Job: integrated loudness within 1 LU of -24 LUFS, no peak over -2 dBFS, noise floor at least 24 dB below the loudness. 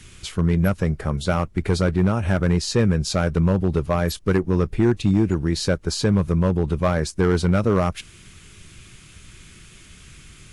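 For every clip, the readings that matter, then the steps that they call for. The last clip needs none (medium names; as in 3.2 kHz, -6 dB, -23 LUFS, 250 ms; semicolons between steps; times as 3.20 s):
clipped samples 1.8%; clipping level -10.0 dBFS; loudness -21.5 LUFS; peak level -10.0 dBFS; loudness target -24.0 LUFS
-> clip repair -10 dBFS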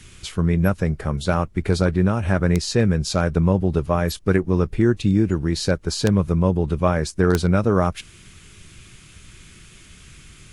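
clipped samples 0.0%; loudness -20.5 LUFS; peak level -1.0 dBFS; loudness target -24.0 LUFS
-> trim -3.5 dB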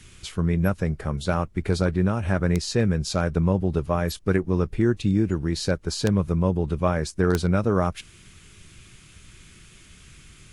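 loudness -24.0 LUFS; peak level -4.5 dBFS; noise floor -51 dBFS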